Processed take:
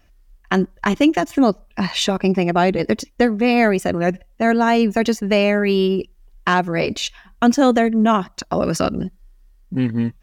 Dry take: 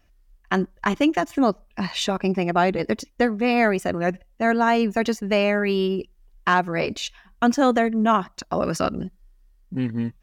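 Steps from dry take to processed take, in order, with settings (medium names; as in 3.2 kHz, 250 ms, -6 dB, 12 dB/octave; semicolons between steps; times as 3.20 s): dynamic bell 1.2 kHz, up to -5 dB, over -30 dBFS, Q 0.8; trim +5.5 dB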